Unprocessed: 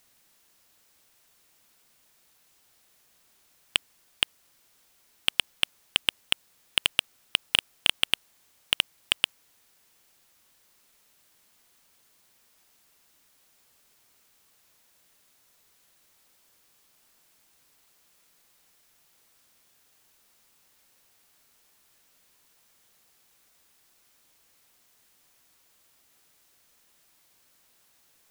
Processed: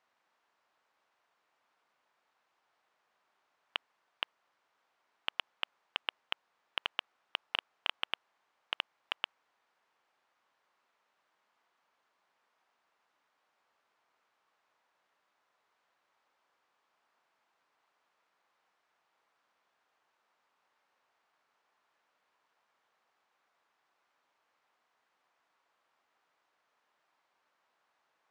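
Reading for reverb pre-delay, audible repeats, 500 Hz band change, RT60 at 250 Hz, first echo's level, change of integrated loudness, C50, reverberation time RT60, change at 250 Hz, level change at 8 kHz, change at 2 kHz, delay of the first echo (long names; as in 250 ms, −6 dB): no reverb audible, no echo audible, −6.5 dB, no reverb audible, no echo audible, −12.0 dB, no reverb audible, no reverb audible, −13.5 dB, −30.5 dB, −10.0 dB, no echo audible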